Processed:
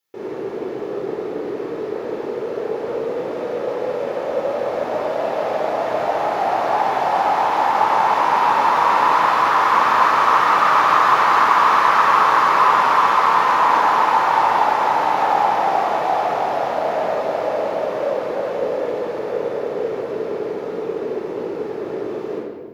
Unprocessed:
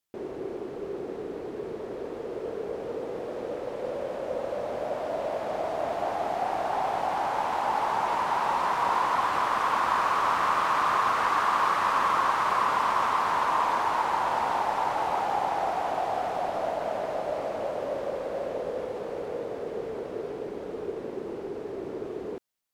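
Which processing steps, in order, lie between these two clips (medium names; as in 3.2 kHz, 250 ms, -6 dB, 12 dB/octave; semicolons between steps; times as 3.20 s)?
high-pass 330 Hz 6 dB/octave; peaking EQ 8.5 kHz -11.5 dB 0.27 oct; simulated room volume 1500 m³, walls mixed, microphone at 4.2 m; trim +3 dB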